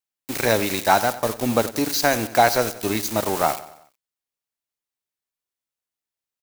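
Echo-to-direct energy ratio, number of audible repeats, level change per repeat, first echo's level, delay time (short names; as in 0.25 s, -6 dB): -15.0 dB, 3, -6.5 dB, -16.0 dB, 92 ms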